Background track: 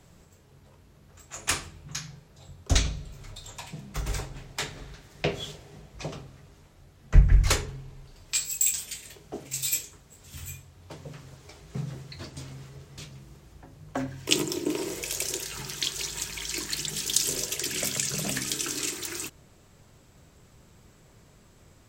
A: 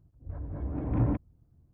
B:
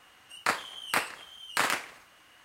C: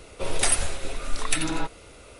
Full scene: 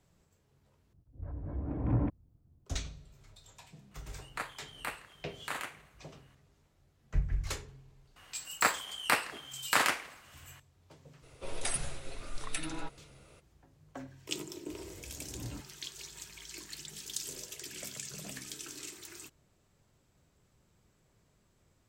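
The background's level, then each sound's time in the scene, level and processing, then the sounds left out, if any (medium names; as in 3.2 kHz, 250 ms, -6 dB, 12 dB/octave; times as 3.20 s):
background track -14 dB
0.93 s: replace with A -3 dB
3.91 s: add B -11 dB + peaking EQ 5.2 kHz -9.5 dB 0.34 oct
8.16 s: add B
11.22 s: add C -12 dB, fades 0.02 s
14.44 s: add A -16.5 dB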